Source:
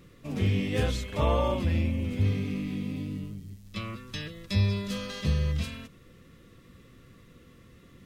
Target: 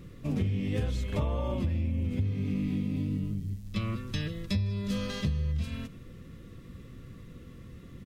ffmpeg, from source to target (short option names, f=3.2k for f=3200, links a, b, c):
-filter_complex "[0:a]lowshelf=f=310:g=9.5,acompressor=threshold=-26dB:ratio=12,asplit=2[a][b];[b]adelay=157.4,volume=-21dB,highshelf=f=4k:g=-3.54[c];[a][c]amix=inputs=2:normalize=0"